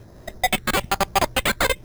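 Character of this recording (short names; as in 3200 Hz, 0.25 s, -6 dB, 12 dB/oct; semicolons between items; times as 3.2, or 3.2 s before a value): phasing stages 6, 1.1 Hz, lowest notch 800–4100 Hz; aliases and images of a low sample rate 5700 Hz, jitter 0%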